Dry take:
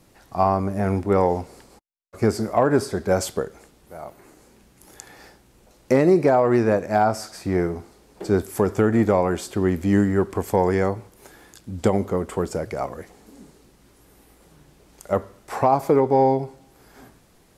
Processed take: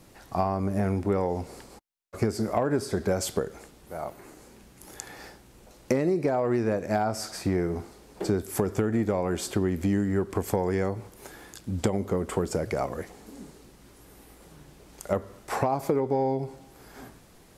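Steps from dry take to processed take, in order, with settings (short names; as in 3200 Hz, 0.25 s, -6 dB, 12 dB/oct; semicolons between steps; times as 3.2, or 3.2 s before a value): dynamic EQ 1000 Hz, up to -4 dB, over -31 dBFS, Q 0.81; compressor, threshold -24 dBFS, peak gain reduction 11 dB; gain +2 dB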